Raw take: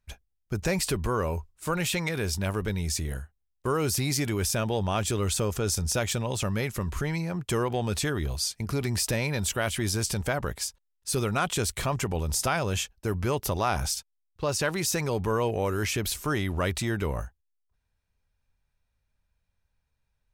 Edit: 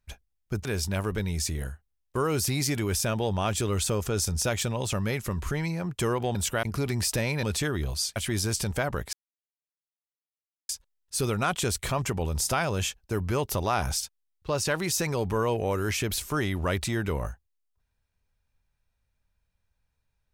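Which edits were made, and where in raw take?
0.65–2.15 s: delete
7.85–8.58 s: swap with 9.38–9.66 s
10.63 s: insert silence 1.56 s

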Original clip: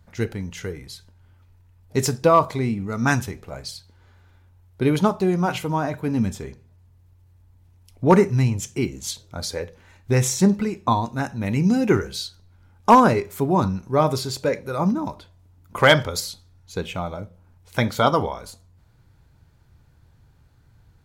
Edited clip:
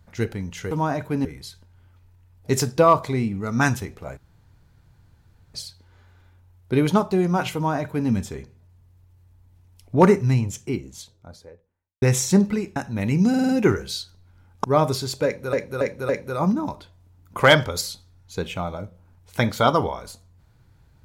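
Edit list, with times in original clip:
3.63 s: insert room tone 1.37 s
5.64–6.18 s: copy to 0.71 s
8.15–10.11 s: studio fade out
10.85–11.21 s: delete
11.74 s: stutter 0.05 s, 5 plays
12.89–13.87 s: delete
14.48–14.76 s: loop, 4 plays

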